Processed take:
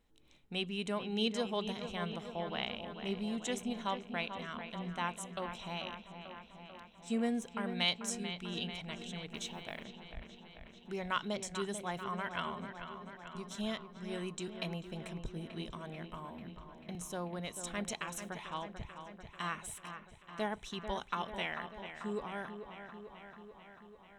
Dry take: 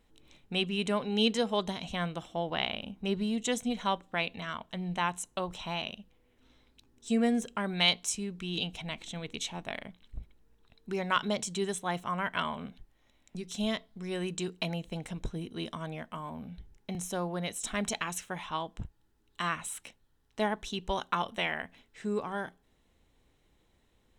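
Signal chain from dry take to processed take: 9.29–9.84 s: modulation noise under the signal 30 dB; feedback echo behind a low-pass 441 ms, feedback 68%, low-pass 3.2 kHz, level -9 dB; trim -6.5 dB

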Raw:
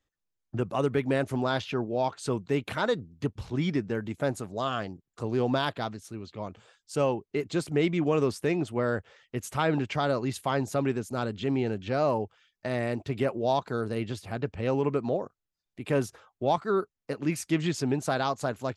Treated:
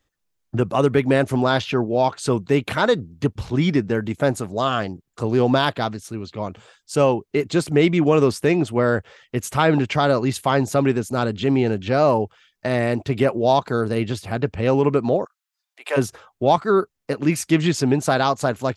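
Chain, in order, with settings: 15.24–15.96 s: high-pass 1.3 kHz -> 540 Hz 24 dB/octave; trim +9 dB

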